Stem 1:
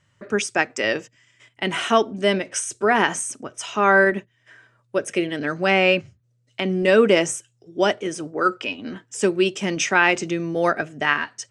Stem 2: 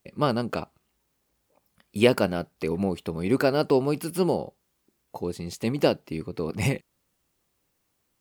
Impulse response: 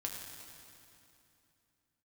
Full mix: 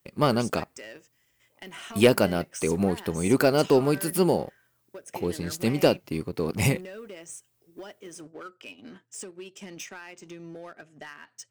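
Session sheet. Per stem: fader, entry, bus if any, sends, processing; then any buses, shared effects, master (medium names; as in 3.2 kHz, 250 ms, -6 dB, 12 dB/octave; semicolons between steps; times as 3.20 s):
-12.5 dB, 0.00 s, no send, compression 16:1, threshold -25 dBFS, peak gain reduction 15.5 dB; saturation -24 dBFS, distortion -13 dB
-2.0 dB, 0.00 s, no send, none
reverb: none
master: treble shelf 8.8 kHz +9.5 dB; waveshaping leveller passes 1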